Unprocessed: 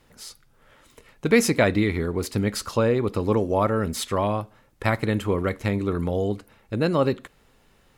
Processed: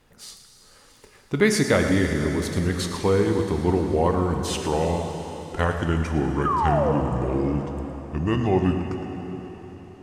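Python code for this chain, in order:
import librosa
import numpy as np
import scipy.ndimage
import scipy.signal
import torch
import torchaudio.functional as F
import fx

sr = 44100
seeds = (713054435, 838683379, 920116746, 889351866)

y = fx.speed_glide(x, sr, from_pct=96, to_pct=63)
y = fx.spec_paint(y, sr, seeds[0], shape='fall', start_s=6.45, length_s=0.47, low_hz=450.0, high_hz=1300.0, level_db=-22.0)
y = y + 10.0 ** (-13.0 / 20.0) * np.pad(y, (int(112 * sr / 1000.0), 0))[:len(y)]
y = fx.rev_plate(y, sr, seeds[1], rt60_s=4.4, hf_ratio=1.0, predelay_ms=0, drr_db=4.5)
y = y * 10.0 ** (-1.0 / 20.0)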